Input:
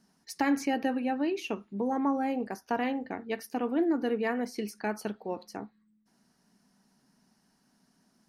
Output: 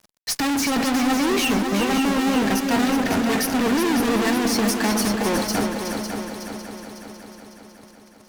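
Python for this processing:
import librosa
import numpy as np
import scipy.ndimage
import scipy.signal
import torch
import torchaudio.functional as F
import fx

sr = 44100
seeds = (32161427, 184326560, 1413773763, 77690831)

y = fx.low_shelf(x, sr, hz=200.0, db=10.0)
y = fx.fuzz(y, sr, gain_db=49.0, gate_db=-57.0)
y = fx.echo_heads(y, sr, ms=184, heads='second and third', feedback_pct=58, wet_db=-7.5)
y = F.gain(torch.from_numpy(y), -7.5).numpy()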